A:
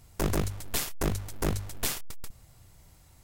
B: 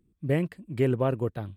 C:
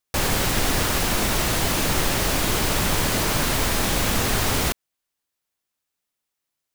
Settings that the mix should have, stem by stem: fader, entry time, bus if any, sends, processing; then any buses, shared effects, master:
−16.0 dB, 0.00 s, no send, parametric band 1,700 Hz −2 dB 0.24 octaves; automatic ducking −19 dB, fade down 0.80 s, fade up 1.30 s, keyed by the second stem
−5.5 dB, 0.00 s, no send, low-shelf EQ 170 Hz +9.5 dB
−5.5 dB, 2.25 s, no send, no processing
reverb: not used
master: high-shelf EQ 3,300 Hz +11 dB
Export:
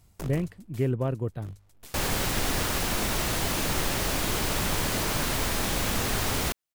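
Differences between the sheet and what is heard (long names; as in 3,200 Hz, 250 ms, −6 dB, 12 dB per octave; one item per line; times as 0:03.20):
stem A −16.0 dB → −4.0 dB
stem C: entry 2.25 s → 1.80 s
master: missing high-shelf EQ 3,300 Hz +11 dB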